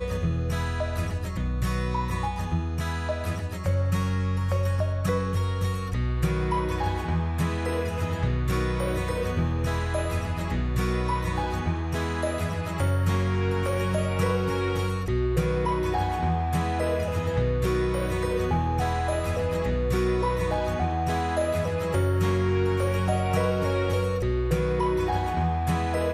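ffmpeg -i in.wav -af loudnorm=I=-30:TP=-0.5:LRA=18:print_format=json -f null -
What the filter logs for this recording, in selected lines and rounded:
"input_i" : "-26.6",
"input_tp" : "-12.7",
"input_lra" : "2.4",
"input_thresh" : "-36.6",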